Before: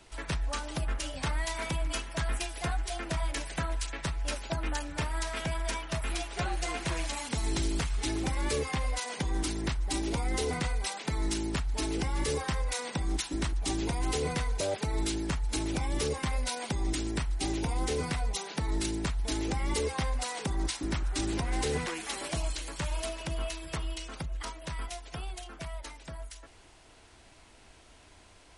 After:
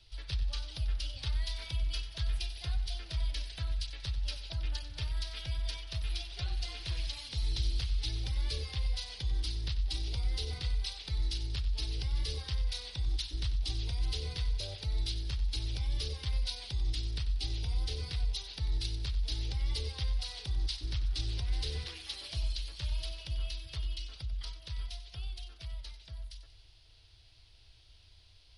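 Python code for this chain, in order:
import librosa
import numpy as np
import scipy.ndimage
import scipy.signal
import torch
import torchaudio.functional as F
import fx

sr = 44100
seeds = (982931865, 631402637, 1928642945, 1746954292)

p1 = fx.curve_eq(x, sr, hz=(110.0, 190.0, 450.0, 1000.0, 2100.0, 3400.0, 4800.0, 7400.0, 10000.0), db=(0, -23, -16, -19, -13, 0, 2, -21, -12))
y = p1 + fx.echo_feedback(p1, sr, ms=93, feedback_pct=49, wet_db=-13.0, dry=0)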